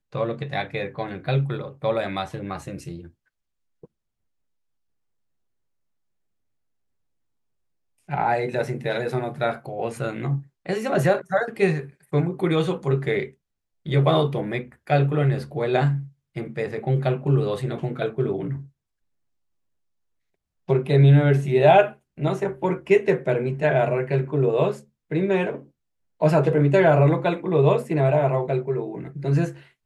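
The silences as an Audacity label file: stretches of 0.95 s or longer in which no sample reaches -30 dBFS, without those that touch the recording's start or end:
2.990000	8.100000	silence
18.600000	20.690000	silence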